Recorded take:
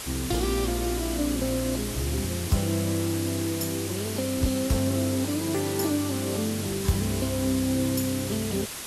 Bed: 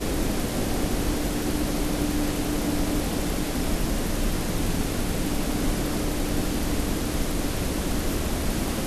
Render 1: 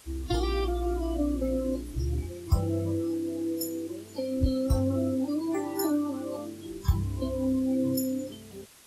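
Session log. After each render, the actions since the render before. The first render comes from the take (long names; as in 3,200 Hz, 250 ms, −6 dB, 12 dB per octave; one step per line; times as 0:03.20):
noise reduction from a noise print 18 dB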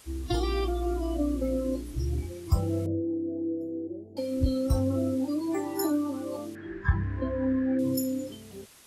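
0:02.86–0:04.17: elliptic low-pass filter 730 Hz
0:06.55–0:07.79: low-pass with resonance 1,700 Hz, resonance Q 13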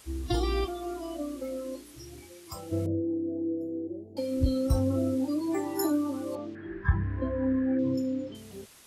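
0:00.64–0:02.71: high-pass filter 480 Hz → 1,200 Hz 6 dB per octave
0:06.35–0:08.35: high-frequency loss of the air 190 metres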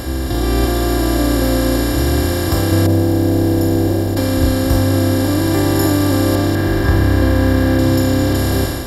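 compressor on every frequency bin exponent 0.2
automatic gain control gain up to 9 dB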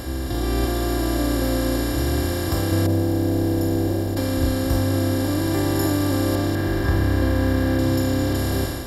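level −6.5 dB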